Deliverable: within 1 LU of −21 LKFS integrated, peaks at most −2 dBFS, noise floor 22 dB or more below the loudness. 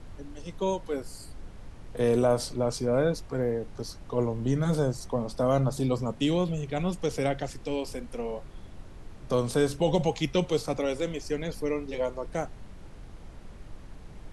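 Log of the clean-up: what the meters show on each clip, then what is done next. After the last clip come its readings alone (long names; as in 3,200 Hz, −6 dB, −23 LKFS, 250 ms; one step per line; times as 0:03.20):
background noise floor −46 dBFS; target noise floor −51 dBFS; integrated loudness −29.0 LKFS; sample peak −12.0 dBFS; target loudness −21.0 LKFS
→ noise reduction from a noise print 6 dB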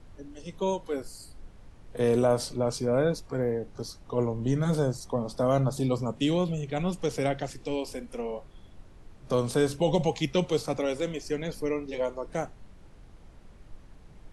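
background noise floor −52 dBFS; integrated loudness −29.0 LKFS; sample peak −12.5 dBFS; target loudness −21.0 LKFS
→ level +8 dB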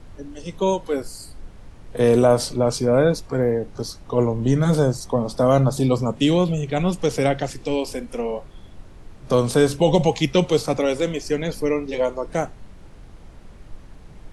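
integrated loudness −21.0 LKFS; sample peak −4.5 dBFS; background noise floor −44 dBFS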